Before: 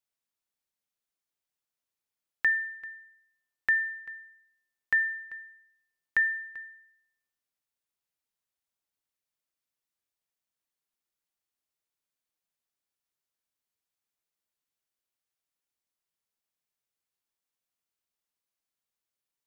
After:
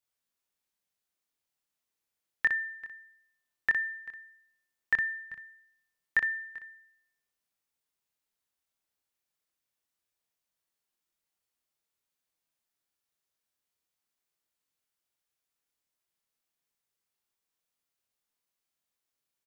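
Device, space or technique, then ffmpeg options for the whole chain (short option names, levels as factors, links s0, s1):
slapback doubling: -filter_complex "[0:a]asplit=3[s0][s1][s2];[s1]adelay=26,volume=0.708[s3];[s2]adelay=61,volume=0.501[s4];[s0][s3][s4]amix=inputs=3:normalize=0,asettb=1/sr,asplit=3[s5][s6][s7];[s5]atrim=end=4.964[s8];[s6]atrim=start=4.96:end=5.48,asetpts=PTS-STARTPTS,afade=t=in:d=0.004:c=qsin,afade=t=out:st=0.516:d=0.004:c=qsin,lowshelf=f=240:t=q:w=1.5:g=9[s9];[s7]atrim=start=5.476[s10];[s8][s9]acrossfade=d=0.004:c1=hsin:c2=qsin[s11];[s11][s10]acrossfade=d=0.004:c1=qsin:c2=hsin"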